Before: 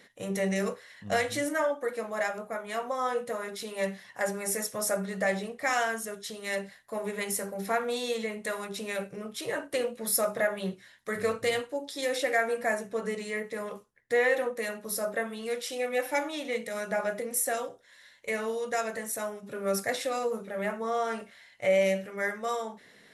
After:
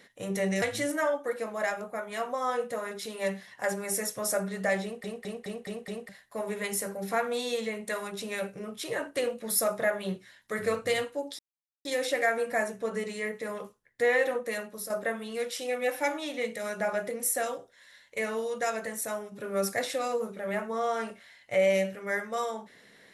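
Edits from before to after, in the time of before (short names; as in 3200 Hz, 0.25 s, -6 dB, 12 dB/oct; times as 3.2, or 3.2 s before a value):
0.62–1.19 cut
5.4 stutter in place 0.21 s, 6 plays
11.96 insert silence 0.46 s
14.69–15.01 fade out, to -8 dB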